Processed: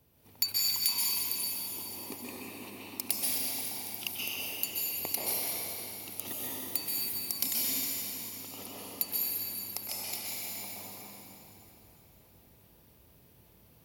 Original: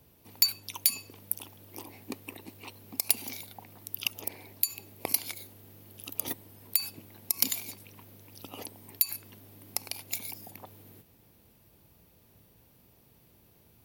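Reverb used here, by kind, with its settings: plate-style reverb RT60 3.6 s, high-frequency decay 0.9×, pre-delay 0.115 s, DRR -7 dB; gain -6.5 dB

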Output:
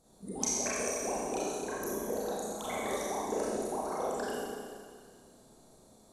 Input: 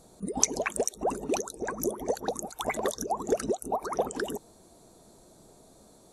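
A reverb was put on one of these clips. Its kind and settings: Schroeder reverb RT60 2 s, combs from 29 ms, DRR -8 dB; gain -12 dB

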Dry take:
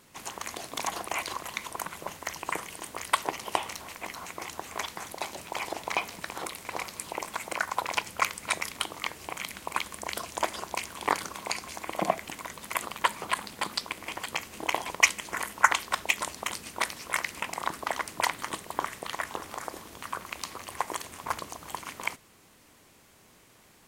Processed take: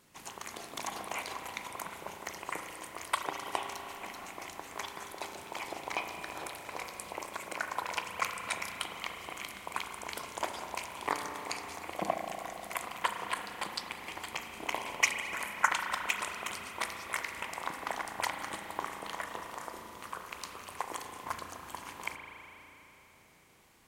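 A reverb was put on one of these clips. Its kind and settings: spring tank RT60 3.5 s, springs 35 ms, chirp 70 ms, DRR 3.5 dB; gain -6.5 dB

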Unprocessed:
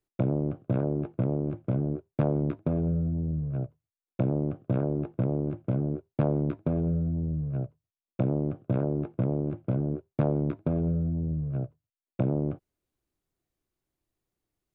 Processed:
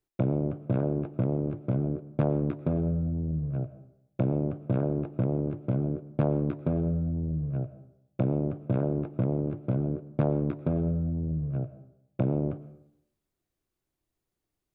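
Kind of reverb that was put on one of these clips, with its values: digital reverb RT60 0.77 s, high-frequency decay 0.65×, pre-delay 70 ms, DRR 14.5 dB

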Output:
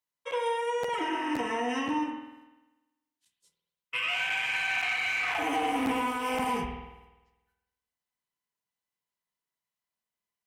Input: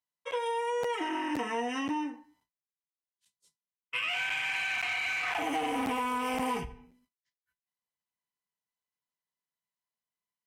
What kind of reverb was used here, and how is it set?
spring tank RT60 1.1 s, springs 49 ms, chirp 75 ms, DRR 4 dB; gain +1 dB

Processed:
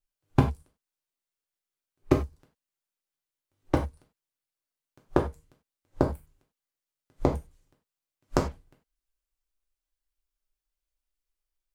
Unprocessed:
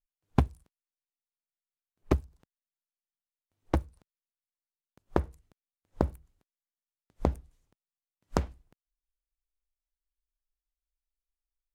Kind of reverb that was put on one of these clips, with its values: non-linear reverb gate 0.12 s falling, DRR 0.5 dB; gain +1.5 dB

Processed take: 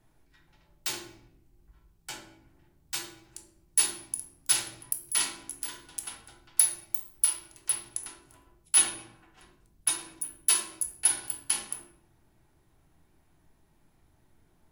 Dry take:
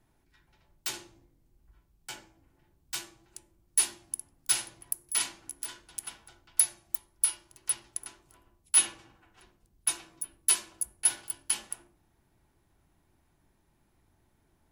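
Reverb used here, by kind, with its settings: shoebox room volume 190 m³, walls mixed, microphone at 0.53 m; gain +1.5 dB

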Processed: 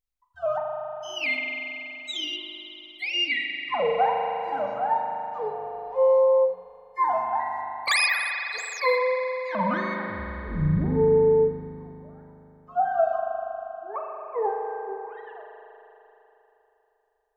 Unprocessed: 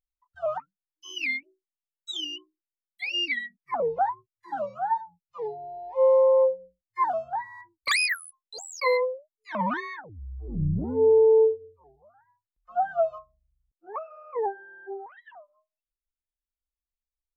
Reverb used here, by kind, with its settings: spring tank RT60 3.4 s, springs 39 ms, chirp 25 ms, DRR 0.5 dB; gain +1 dB

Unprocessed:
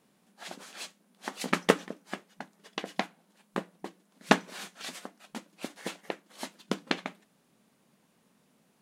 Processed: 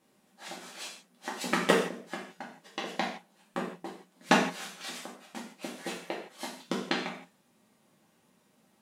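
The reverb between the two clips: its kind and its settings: non-linear reverb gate 0.19 s falling, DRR -4 dB; gain -4 dB

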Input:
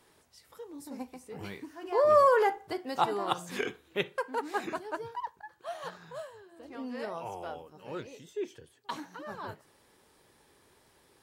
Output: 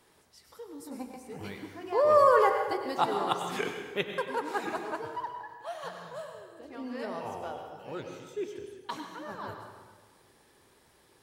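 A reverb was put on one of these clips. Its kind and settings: plate-style reverb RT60 1.4 s, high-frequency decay 0.75×, pre-delay 85 ms, DRR 5 dB

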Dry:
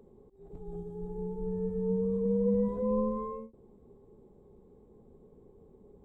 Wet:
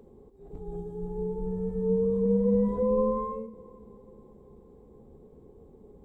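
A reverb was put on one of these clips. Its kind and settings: two-slope reverb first 0.25 s, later 4.2 s, from -22 dB, DRR 9.5 dB; gain +4 dB

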